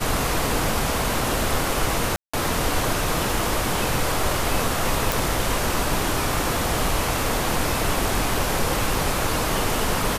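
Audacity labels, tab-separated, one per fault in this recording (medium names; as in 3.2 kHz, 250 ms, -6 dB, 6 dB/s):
2.160000	2.330000	dropout 175 ms
5.120000	5.120000	pop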